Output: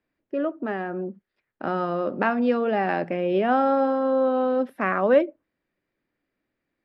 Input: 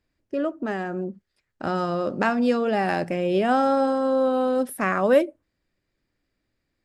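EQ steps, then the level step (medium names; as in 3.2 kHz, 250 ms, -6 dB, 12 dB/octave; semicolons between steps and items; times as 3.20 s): three-band isolator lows -13 dB, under 160 Hz, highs -18 dB, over 3.5 kHz; peaking EQ 9.8 kHz -11.5 dB 0.77 oct; 0.0 dB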